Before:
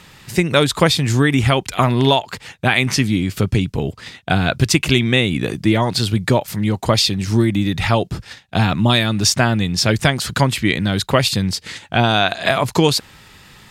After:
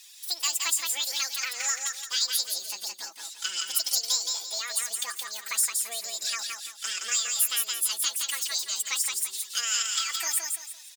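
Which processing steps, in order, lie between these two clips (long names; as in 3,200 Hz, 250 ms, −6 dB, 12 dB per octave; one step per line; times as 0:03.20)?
Bessel high-pass filter 2,000 Hz, order 2
in parallel at +1 dB: downward compressor, threshold −31 dBFS, peak gain reduction 17.5 dB
on the sum: phase-vocoder stretch with locked phases 1.6×
double-tracking delay 12 ms −6 dB
on a send: repeating echo 339 ms, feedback 32%, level −4 dB
on the sum: wrong playback speed 7.5 ips tape played at 15 ips
level −8.5 dB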